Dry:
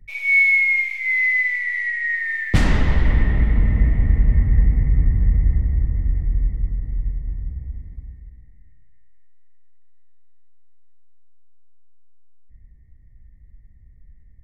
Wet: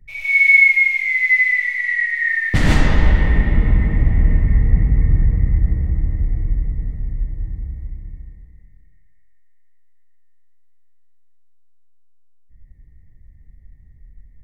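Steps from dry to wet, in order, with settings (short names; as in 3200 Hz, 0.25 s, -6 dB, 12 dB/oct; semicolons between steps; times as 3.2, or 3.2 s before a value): non-linear reverb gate 0.18 s rising, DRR -3.5 dB; gain -1 dB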